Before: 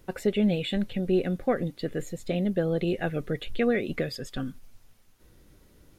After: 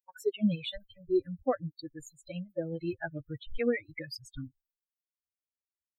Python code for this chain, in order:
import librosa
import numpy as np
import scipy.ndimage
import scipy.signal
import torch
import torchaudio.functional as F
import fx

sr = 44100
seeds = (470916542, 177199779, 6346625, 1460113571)

y = fx.bin_expand(x, sr, power=3.0)
y = fx.noise_reduce_blind(y, sr, reduce_db=24)